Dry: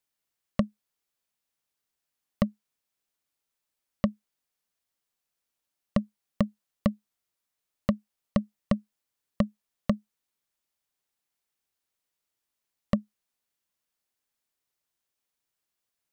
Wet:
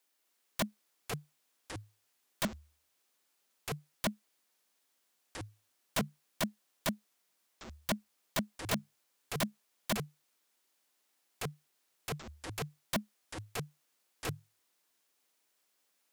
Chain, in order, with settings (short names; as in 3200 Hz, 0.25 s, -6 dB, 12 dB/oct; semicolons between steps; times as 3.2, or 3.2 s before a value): steep high-pass 240 Hz 36 dB/oct; wrapped overs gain 32 dB; echoes that change speed 0.256 s, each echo -6 st, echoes 3, each echo -6 dB; gain +7 dB